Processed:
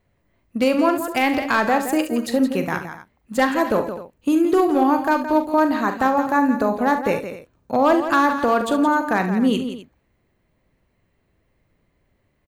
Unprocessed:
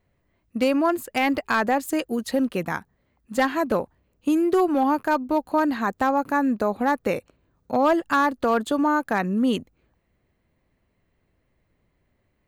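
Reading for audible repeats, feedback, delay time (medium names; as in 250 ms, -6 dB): 3, no regular repeats, 42 ms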